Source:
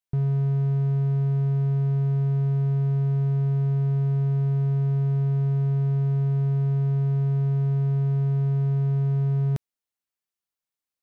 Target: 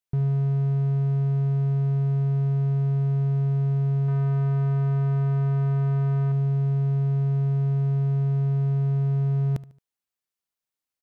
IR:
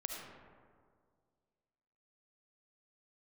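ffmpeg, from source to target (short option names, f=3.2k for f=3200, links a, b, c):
-filter_complex "[0:a]asettb=1/sr,asplit=3[a][b][c];[a]atrim=end=4.084[d];[b]atrim=start=4.08:end=6.32,asetpts=PTS-STARTPTS,afade=t=in:d=0.004:c=qsin,afade=t=out:st=2.236:d=0.004:c=qsin,equalizer=f=1.3k:t=o:w=1.6:g=9.5[e];[c]atrim=start=6.316[f];[d][e]acrossfade=d=0.004:c1=hsin:c2=qsin[g];[g][f]acrossfade=d=0.004:c1=qsin:c2=hsin,aecho=1:1:74|148|222:0.126|0.0491|0.0191"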